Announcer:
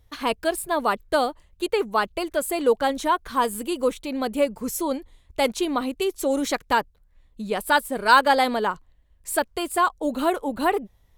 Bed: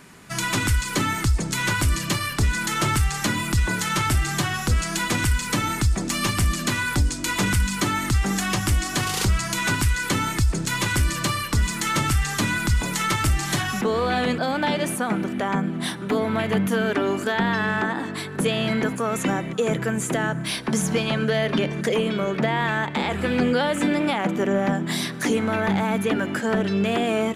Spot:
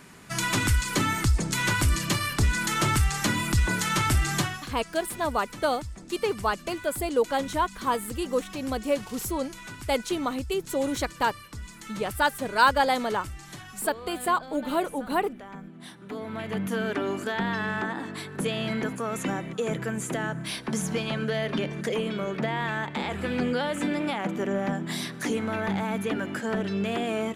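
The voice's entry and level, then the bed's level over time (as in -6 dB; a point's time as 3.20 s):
4.50 s, -4.0 dB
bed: 4.41 s -2 dB
4.72 s -18.5 dB
15.73 s -18.5 dB
16.77 s -6 dB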